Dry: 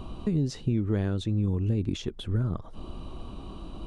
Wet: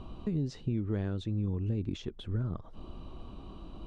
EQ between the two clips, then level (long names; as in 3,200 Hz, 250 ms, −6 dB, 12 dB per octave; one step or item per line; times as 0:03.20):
high-frequency loss of the air 71 metres
−5.5 dB